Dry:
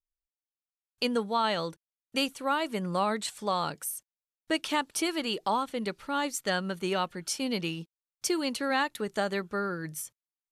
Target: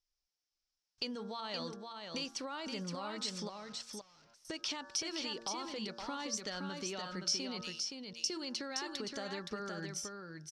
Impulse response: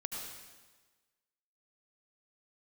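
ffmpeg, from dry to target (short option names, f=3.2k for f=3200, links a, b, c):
-filter_complex "[0:a]asettb=1/sr,asplit=3[a][b][c];[a]atrim=end=7.614[d];[b]atrim=start=7.61:end=8.3,asetpts=PTS-STARTPTS,afade=t=in:d=0.004:c=qsin,afade=t=out:st=0.686:d=0.004:c=qsin,aderivative[e];[c]atrim=start=8.296[f];[d][e]acrossfade=d=0.004:c1=hsin:c2=qsin[g];[g][f]acrossfade=d=0.004:c1=qsin:c2=hsin,bandreject=f=115.4:t=h:w=4,bandreject=f=230.8:t=h:w=4,bandreject=f=346.2:t=h:w=4,bandreject=f=461.6:t=h:w=4,bandreject=f=577:t=h:w=4,bandreject=f=692.4:t=h:w=4,bandreject=f=807.8:t=h:w=4,bandreject=f=923.2:t=h:w=4,bandreject=f=1.0386k:t=h:w=4,bandreject=f=1.154k:t=h:w=4,bandreject=f=1.2694k:t=h:w=4,bandreject=f=1.3848k:t=h:w=4,bandreject=f=1.5002k:t=h:w=4,bandreject=f=1.6156k:t=h:w=4,bandreject=f=1.731k:t=h:w=4,alimiter=level_in=3dB:limit=-24dB:level=0:latency=1:release=47,volume=-3dB,acompressor=threshold=-42dB:ratio=5,asettb=1/sr,asplit=3[h][i][j];[h]atrim=end=3.494[k];[i]atrim=start=3.49:end=3.93,asetpts=PTS-STARTPTS,afade=t=in:d=0.004:c=qsin,afade=t=out:st=0.436:d=0.004:c=qsin,aeval=exprs='(tanh(1260*val(0)+0.05)-tanh(0.05))/1260':c=same[l];[j]atrim=start=3.926[m];[k][l]acrossfade=d=0.004:c1=hsin:c2=qsin[n];[n][m]acrossfade=d=0.004:c1=qsin:c2=hsin,lowpass=f=5.4k:t=q:w=5.5,aecho=1:1:520:0.562,volume=1.5dB"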